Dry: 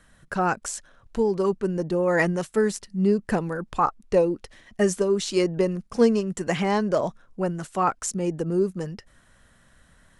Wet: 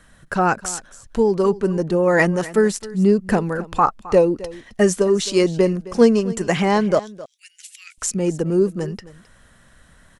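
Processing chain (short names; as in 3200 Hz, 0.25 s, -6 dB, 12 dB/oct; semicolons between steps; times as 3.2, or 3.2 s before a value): 6.99–7.98 steep high-pass 2200 Hz 48 dB/oct; on a send: echo 0.264 s -18 dB; on the sum: gain +5.5 dB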